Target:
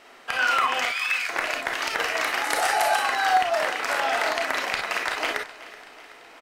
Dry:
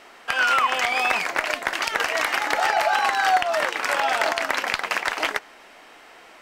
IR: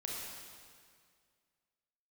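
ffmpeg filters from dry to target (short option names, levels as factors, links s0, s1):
-filter_complex "[0:a]asettb=1/sr,asplit=3[s0][s1][s2];[s0]atrim=end=0.854[s3];[s1]atrim=start=0.85:end=1.29,asetpts=PTS-STARTPTS,afade=t=in:d=0.004:c=qsin,afade=t=out:st=0.436:d=0.004:c=qsin,highpass=f=1400:w=0.5412,highpass=f=1400:w=1.3066[s4];[s2]atrim=start=1.286[s5];[s3][s4]acrossfade=d=0.004:c1=hsin:c2=qsin[s6];[s6][s5]acrossfade=d=0.004:c1=qsin:c2=hsin,asettb=1/sr,asplit=3[s7][s8][s9];[s7]atrim=end=2.444[s10];[s8]atrim=start=2.44:end=3,asetpts=PTS-STARTPTS,afade=t=in:d=0.004:c=qsin,afade=t=out:st=0.556:d=0.004:c=qsin,equalizer=f=10000:t=o:w=0.9:g=14.5[s11];[s9]atrim=start=2.996[s12];[s10][s11]acrossfade=d=0.004:c1=hsin:c2=qsin[s13];[s13][s12]acrossfade=d=0.004:c1=qsin:c2=hsin,aecho=1:1:377|754|1131|1508|1885:0.126|0.073|0.0424|0.0246|0.0142[s14];[1:a]atrim=start_sample=2205,atrim=end_sample=3087[s15];[s14][s15]afir=irnorm=-1:irlink=0"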